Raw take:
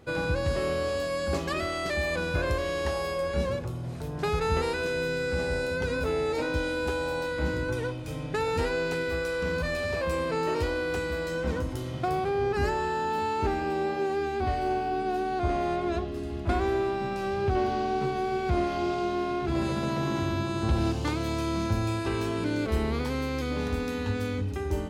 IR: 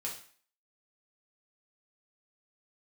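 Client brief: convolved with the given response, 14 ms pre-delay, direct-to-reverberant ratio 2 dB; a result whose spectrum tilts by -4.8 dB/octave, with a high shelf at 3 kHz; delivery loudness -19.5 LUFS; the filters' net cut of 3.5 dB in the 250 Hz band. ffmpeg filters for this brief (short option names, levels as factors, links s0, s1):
-filter_complex "[0:a]equalizer=f=250:t=o:g=-5.5,highshelf=f=3000:g=6.5,asplit=2[s0][s1];[1:a]atrim=start_sample=2205,adelay=14[s2];[s1][s2]afir=irnorm=-1:irlink=0,volume=0.75[s3];[s0][s3]amix=inputs=2:normalize=0,volume=2.24"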